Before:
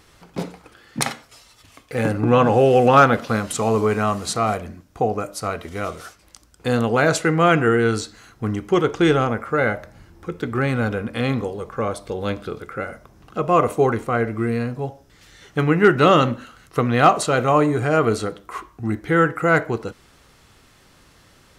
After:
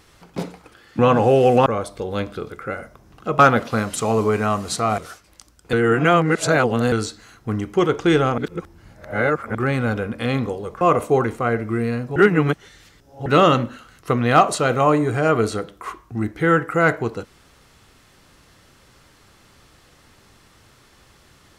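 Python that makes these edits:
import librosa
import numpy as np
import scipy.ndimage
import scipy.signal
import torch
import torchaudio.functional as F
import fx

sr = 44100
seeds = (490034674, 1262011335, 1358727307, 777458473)

y = fx.edit(x, sr, fx.cut(start_s=0.99, length_s=1.3),
    fx.cut(start_s=4.55, length_s=1.38),
    fx.reverse_span(start_s=6.68, length_s=1.19),
    fx.reverse_span(start_s=9.33, length_s=1.17),
    fx.move(start_s=11.76, length_s=1.73, to_s=2.96),
    fx.reverse_span(start_s=14.84, length_s=1.1), tone=tone)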